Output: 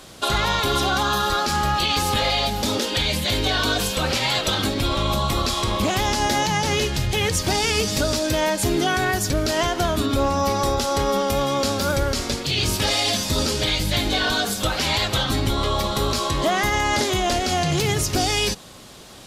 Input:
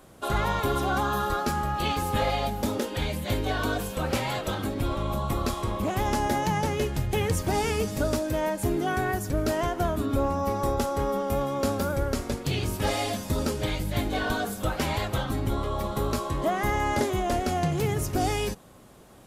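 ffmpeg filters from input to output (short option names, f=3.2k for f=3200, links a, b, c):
-af "equalizer=f=4.4k:w=0.63:g=14,alimiter=limit=-17.5dB:level=0:latency=1:release=101,volume=6dB"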